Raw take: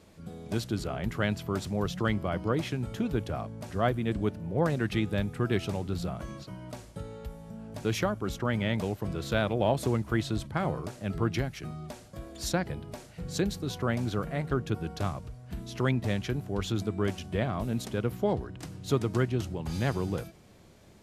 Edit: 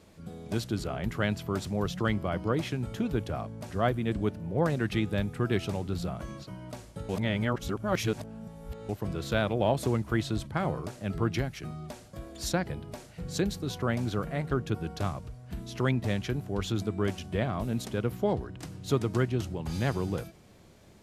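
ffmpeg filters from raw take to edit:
-filter_complex "[0:a]asplit=3[a][b][c];[a]atrim=end=7.092[d];[b]atrim=start=7.088:end=8.892,asetpts=PTS-STARTPTS,areverse[e];[c]atrim=start=8.888[f];[d][e]acrossfade=d=0.004:c1=hsin:c2=hsin[g];[g][f]acrossfade=d=0.004:c1=hsin:c2=hsin"

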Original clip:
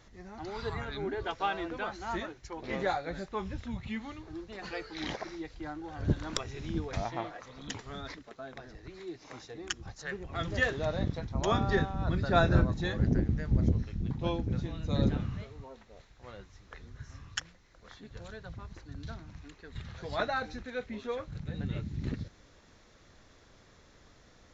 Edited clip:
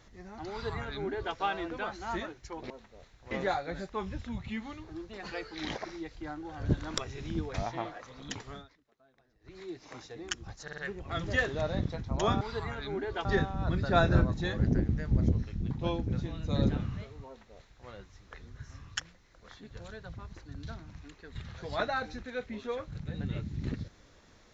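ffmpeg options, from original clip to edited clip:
-filter_complex "[0:a]asplit=10[a][b][c][d][e][f][g][h][i][j];[a]atrim=end=2.702[k];[b]atrim=start=15.668:end=16.282[l];[c]atrim=start=2.698:end=8.07,asetpts=PTS-STARTPTS,afade=t=out:st=5.192:d=0.18:silence=0.0794328[m];[d]atrim=start=8.07:end=8.79,asetpts=PTS-STARTPTS,volume=-22dB[n];[e]atrim=start=8.79:end=10.072,asetpts=PTS-STARTPTS,afade=t=in:d=0.18:silence=0.0794328[o];[f]atrim=start=10.018:end=10.072[p];[g]atrim=start=10.018:end=10.072[q];[h]atrim=start=10.018:end=11.652[r];[i]atrim=start=0.508:end=1.352[s];[j]atrim=start=11.648[t];[k][l]acrossfade=d=0.004:c1=hsin:c2=hsin[u];[m][n][o]concat=n=3:v=0:a=1[v];[u][v]acrossfade=d=0.004:c1=hsin:c2=hsin[w];[w][p]acrossfade=d=0.004:c1=hsin:c2=hsin[x];[x][q]acrossfade=d=0.004:c1=hsin:c2=hsin[y];[y][r]acrossfade=d=0.004:c1=hsin:c2=hsin[z];[z][s]acrossfade=d=0.004:c1=hsin:c2=hsin[aa];[aa][t]acrossfade=d=0.004:c1=hsin:c2=hsin"

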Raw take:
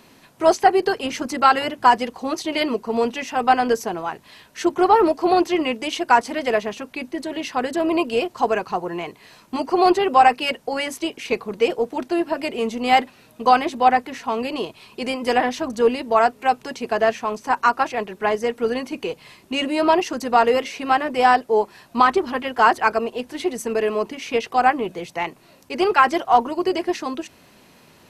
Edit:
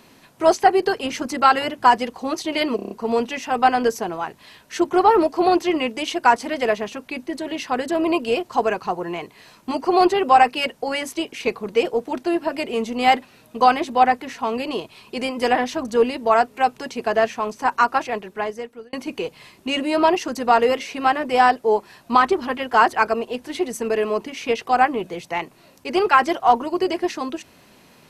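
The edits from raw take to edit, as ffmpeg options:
-filter_complex "[0:a]asplit=7[a][b][c][d][e][f][g];[a]atrim=end=2.792[h];[b]atrim=start=2.758:end=2.792[i];[c]atrim=start=2.758:end=2.792[j];[d]atrim=start=2.758:end=2.792[k];[e]atrim=start=2.758:end=2.792[l];[f]atrim=start=2.758:end=18.78,asetpts=PTS-STARTPTS,afade=t=out:st=15.142:d=0.88[m];[g]atrim=start=18.78,asetpts=PTS-STARTPTS,afade=t=in:d=0.004:c=hsin[n];[h][i]acrossfade=d=0.004:c1=hsin:c2=hsin[o];[o][j]acrossfade=d=0.004:c1=hsin:c2=hsin[p];[p][k]acrossfade=d=0.004:c1=hsin:c2=hsin[q];[q][l]acrossfade=d=0.004:c1=hsin:c2=hsin[r];[m][n]concat=n=2:v=0:a=1[s];[r][s]acrossfade=d=0.004:c1=hsin:c2=hsin"

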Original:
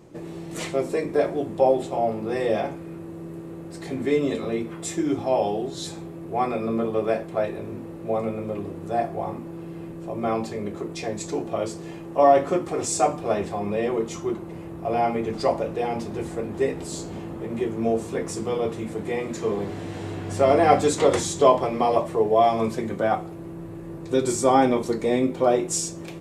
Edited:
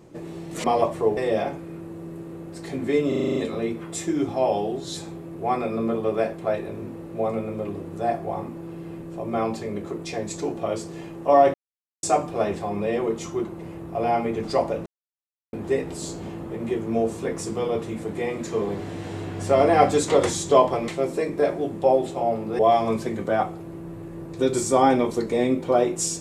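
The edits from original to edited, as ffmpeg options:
-filter_complex "[0:a]asplit=16[a][b][c][d][e][f][g][h][i][j][k][l][m][n][o][p];[a]atrim=end=0.642[q];[b]atrim=start=21.778:end=22.312[r];[c]atrim=start=2.348:end=4.302[s];[d]atrim=start=4.258:end=4.302[t];[e]atrim=start=4.258:end=4.302[u];[f]atrim=start=4.258:end=4.302[v];[g]atrim=start=4.258:end=4.302[w];[h]atrim=start=4.258:end=4.302[x];[i]atrim=start=4.258:end=4.302[y];[j]atrim=start=4.258:end=12.44,asetpts=PTS-STARTPTS,afade=t=out:st=8.178:d=0.004:c=hsin[z];[k]atrim=start=12.44:end=12.93,asetpts=PTS-STARTPTS,volume=0[aa];[l]atrim=start=12.93:end=15.76,asetpts=PTS-STARTPTS,afade=t=in:d=0.004:c=hsin,afade=t=out:st=2.826:d=0.004:c=hsin[ab];[m]atrim=start=15.76:end=16.43,asetpts=PTS-STARTPTS,volume=0[ac];[n]atrim=start=16.43:end=21.782,asetpts=PTS-STARTPTS,afade=t=in:d=0.004:c=hsin[ad];[o]atrim=start=0.638:end=2.352[ae];[p]atrim=start=22.308[af];[q][r]acrossfade=d=0.004:c1=hsin:c2=hsin[ag];[ag][s]acrossfade=d=0.004:c1=hsin:c2=hsin[ah];[ah][t]acrossfade=d=0.004:c1=hsin:c2=hsin[ai];[ai][u]acrossfade=d=0.004:c1=hsin:c2=hsin[aj];[aj][v]acrossfade=d=0.004:c1=hsin:c2=hsin[ak];[ak][w]acrossfade=d=0.004:c1=hsin:c2=hsin[al];[al][x]acrossfade=d=0.004:c1=hsin:c2=hsin[am];[am][y]acrossfade=d=0.004:c1=hsin:c2=hsin[an];[z][aa][ab][ac][ad]concat=n=5:v=0:a=1[ao];[an][ao]acrossfade=d=0.004:c1=hsin:c2=hsin[ap];[ap][ae]acrossfade=d=0.004:c1=hsin:c2=hsin[aq];[aq][af]acrossfade=d=0.004:c1=hsin:c2=hsin"

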